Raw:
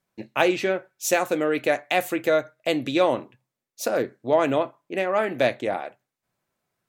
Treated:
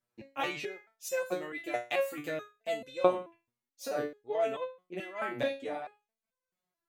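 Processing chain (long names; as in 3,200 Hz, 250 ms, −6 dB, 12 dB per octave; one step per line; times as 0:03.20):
step-sequenced resonator 4.6 Hz 120–510 Hz
level +2 dB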